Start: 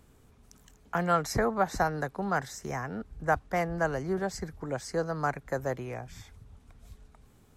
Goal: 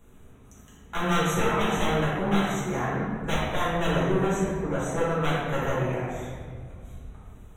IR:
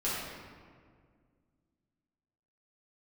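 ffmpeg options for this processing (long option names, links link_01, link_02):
-filter_complex "[0:a]aeval=exprs='0.0501*(abs(mod(val(0)/0.0501+3,4)-2)-1)':channel_layout=same,asuperstop=centerf=4800:order=20:qfactor=2.8[link_01];[1:a]atrim=start_sample=2205[link_02];[link_01][link_02]afir=irnorm=-1:irlink=0"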